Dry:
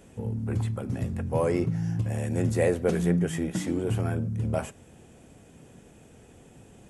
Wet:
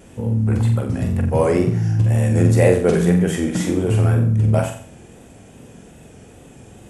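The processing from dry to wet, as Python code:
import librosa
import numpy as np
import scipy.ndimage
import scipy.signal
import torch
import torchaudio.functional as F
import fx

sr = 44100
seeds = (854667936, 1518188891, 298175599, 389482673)

y = fx.room_flutter(x, sr, wall_m=7.7, rt60_s=0.51)
y = fx.wow_flutter(y, sr, seeds[0], rate_hz=2.1, depth_cents=47.0)
y = y * 10.0 ** (7.5 / 20.0)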